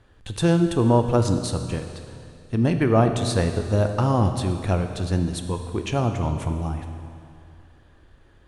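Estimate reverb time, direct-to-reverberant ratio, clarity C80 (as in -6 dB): 2.5 s, 6.0 dB, 8.0 dB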